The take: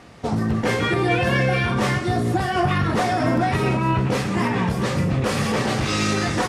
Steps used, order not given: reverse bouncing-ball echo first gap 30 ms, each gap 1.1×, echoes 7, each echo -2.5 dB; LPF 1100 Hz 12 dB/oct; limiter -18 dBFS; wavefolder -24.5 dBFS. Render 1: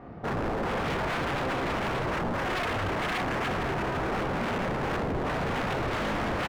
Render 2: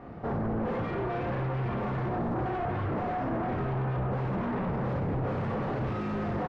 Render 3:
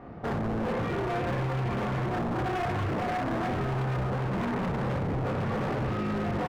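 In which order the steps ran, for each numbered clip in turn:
LPF > limiter > reverse bouncing-ball echo > wavefolder; reverse bouncing-ball echo > limiter > wavefolder > LPF; reverse bouncing-ball echo > limiter > LPF > wavefolder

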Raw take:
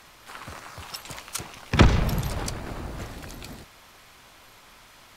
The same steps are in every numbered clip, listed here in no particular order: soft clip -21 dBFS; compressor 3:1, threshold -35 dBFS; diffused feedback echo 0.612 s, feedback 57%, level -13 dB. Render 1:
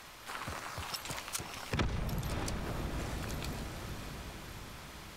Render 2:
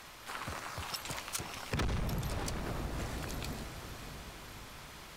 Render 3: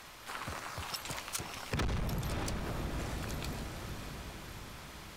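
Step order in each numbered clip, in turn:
diffused feedback echo > compressor > soft clip; soft clip > diffused feedback echo > compressor; diffused feedback echo > soft clip > compressor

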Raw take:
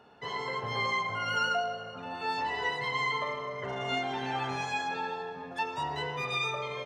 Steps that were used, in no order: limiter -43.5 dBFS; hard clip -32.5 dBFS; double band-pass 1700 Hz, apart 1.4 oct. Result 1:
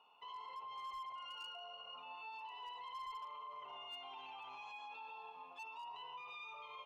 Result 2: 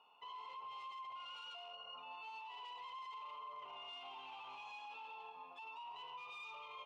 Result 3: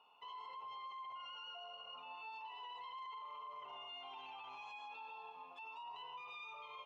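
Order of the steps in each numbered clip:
double band-pass > hard clip > limiter; hard clip > double band-pass > limiter; double band-pass > limiter > hard clip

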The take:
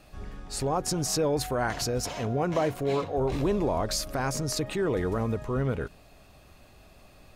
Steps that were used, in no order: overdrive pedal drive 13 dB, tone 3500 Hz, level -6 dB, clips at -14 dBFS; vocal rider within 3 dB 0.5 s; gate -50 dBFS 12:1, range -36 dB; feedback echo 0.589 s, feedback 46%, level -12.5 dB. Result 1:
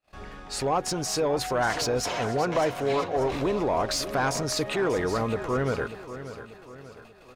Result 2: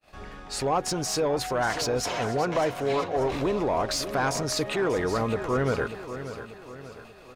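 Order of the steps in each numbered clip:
vocal rider > gate > overdrive pedal > feedback echo; overdrive pedal > gate > feedback echo > vocal rider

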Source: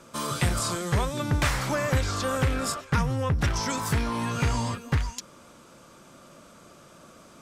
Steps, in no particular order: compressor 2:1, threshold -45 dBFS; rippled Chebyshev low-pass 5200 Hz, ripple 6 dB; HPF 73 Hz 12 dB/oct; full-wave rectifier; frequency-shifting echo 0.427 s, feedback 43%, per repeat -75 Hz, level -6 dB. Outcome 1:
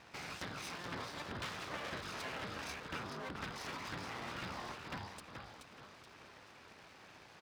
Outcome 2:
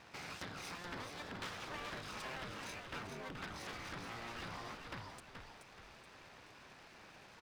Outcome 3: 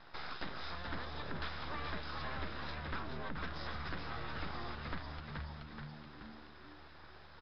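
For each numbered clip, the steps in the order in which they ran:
rippled Chebyshev low-pass > compressor > frequency-shifting echo > full-wave rectifier > HPF; compressor > rippled Chebyshev low-pass > full-wave rectifier > HPF > frequency-shifting echo; HPF > full-wave rectifier > frequency-shifting echo > rippled Chebyshev low-pass > compressor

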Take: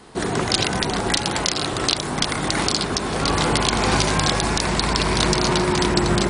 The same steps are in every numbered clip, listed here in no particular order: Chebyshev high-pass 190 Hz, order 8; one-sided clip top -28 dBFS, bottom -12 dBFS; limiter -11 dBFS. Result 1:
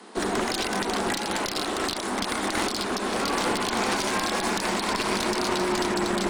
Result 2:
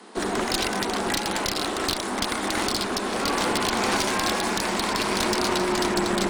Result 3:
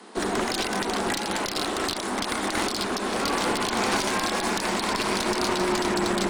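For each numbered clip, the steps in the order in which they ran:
limiter > Chebyshev high-pass > one-sided clip; Chebyshev high-pass > one-sided clip > limiter; Chebyshev high-pass > limiter > one-sided clip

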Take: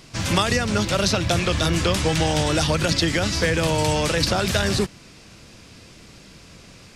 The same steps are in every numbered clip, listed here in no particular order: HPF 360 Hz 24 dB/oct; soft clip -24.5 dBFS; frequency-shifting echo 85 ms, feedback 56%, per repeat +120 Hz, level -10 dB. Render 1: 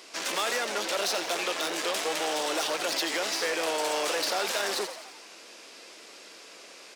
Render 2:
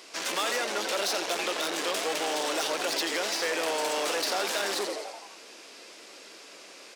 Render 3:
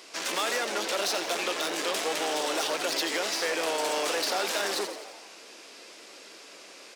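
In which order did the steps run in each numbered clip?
soft clip > HPF > frequency-shifting echo; frequency-shifting echo > soft clip > HPF; soft clip > frequency-shifting echo > HPF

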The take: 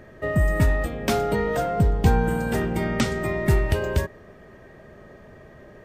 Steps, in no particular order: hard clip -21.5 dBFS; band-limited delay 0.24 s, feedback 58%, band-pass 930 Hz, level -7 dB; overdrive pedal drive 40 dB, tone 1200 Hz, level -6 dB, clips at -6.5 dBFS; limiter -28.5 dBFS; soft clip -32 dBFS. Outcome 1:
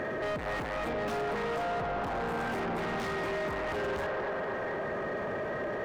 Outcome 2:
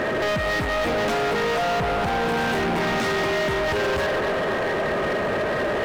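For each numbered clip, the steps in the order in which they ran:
soft clip > band-limited delay > overdrive pedal > limiter > hard clip; limiter > soft clip > band-limited delay > overdrive pedal > hard clip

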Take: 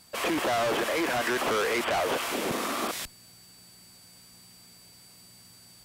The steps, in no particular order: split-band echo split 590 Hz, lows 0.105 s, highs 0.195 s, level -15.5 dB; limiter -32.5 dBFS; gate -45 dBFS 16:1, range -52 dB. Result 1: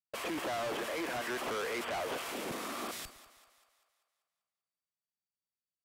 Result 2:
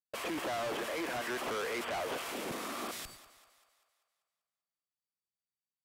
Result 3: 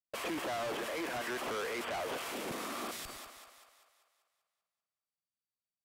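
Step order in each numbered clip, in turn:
limiter > gate > split-band echo; gate > limiter > split-band echo; gate > split-band echo > limiter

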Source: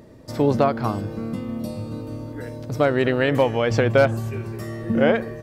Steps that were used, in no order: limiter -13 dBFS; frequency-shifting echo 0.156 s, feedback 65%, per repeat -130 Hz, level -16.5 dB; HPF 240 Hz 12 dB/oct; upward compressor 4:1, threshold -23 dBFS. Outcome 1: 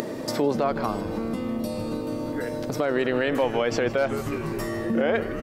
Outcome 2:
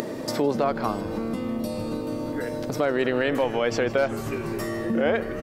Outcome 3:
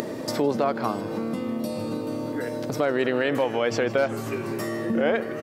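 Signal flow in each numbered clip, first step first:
HPF > frequency-shifting echo > limiter > upward compressor; limiter > HPF > frequency-shifting echo > upward compressor; limiter > frequency-shifting echo > HPF > upward compressor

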